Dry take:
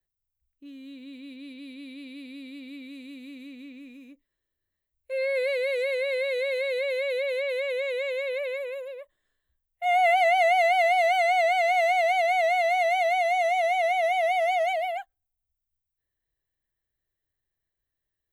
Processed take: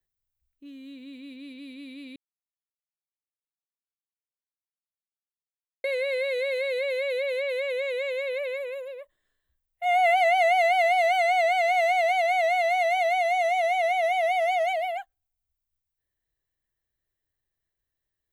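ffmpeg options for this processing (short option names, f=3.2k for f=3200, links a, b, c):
-filter_complex "[0:a]asettb=1/sr,asplit=3[a][b][c];[a]atrim=end=12.094[d];[b]atrim=start=12.09:end=12.97,asetpts=PTS-STARTPTS,afade=t=in:d=0.004:c=qsin,afade=t=out:st=0.876:d=0.004:c=qsin,highpass=310[e];[c]atrim=start=12.966[f];[d][e]acrossfade=d=0.004:c1=hsin:c2=qsin[g];[g][f]acrossfade=d=0.004:c1=qsin:c2=hsin,asplit=3[h][i][j];[h]atrim=end=2.16,asetpts=PTS-STARTPTS,afade=t=out:st=2.156:d=0.004:c=hsin[k];[i]atrim=start=2.16:end=5.84,asetpts=PTS-STARTPTS,volume=0[l];[j]atrim=start=5.84,asetpts=PTS-STARTPTS,afade=t=in:d=0.004:c=hsin[m];[k][l][m]concat=n=3:v=0:a=1"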